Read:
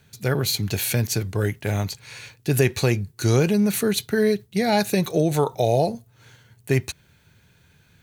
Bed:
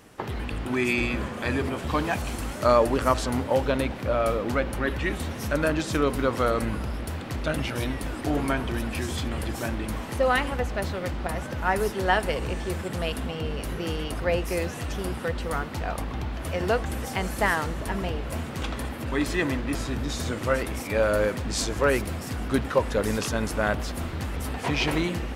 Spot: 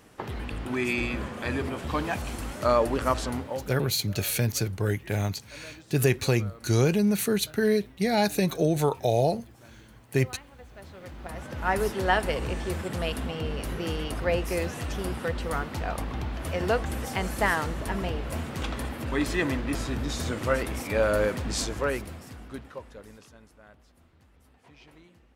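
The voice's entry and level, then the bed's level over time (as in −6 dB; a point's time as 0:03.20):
3.45 s, −3.5 dB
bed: 0:03.28 −3 dB
0:04.04 −23 dB
0:10.51 −23 dB
0:11.73 −1 dB
0:21.53 −1 dB
0:23.58 −29 dB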